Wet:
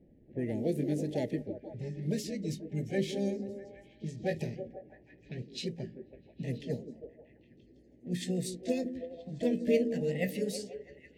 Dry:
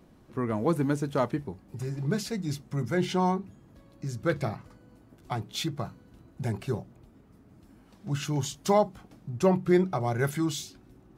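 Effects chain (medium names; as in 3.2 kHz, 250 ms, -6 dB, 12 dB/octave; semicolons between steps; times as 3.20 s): pitch bend over the whole clip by +5 st starting unshifted; Chebyshev band-stop 610–1800 Hz, order 4; harmony voices +5 st -12 dB; level-controlled noise filter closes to 1.1 kHz, open at -26.5 dBFS; repeats whose band climbs or falls 163 ms, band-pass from 290 Hz, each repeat 0.7 oct, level -5.5 dB; trim -3.5 dB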